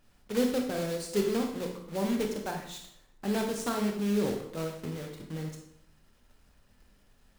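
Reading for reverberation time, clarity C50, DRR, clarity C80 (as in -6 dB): 0.70 s, 5.5 dB, 2.0 dB, 8.5 dB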